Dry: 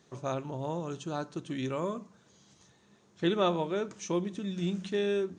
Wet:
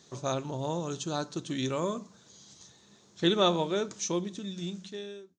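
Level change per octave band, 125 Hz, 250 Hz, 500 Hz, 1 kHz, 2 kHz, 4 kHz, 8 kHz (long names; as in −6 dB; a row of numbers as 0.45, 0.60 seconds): +0.5, +0.5, 0.0, +2.0, +0.5, +7.5, +9.0 decibels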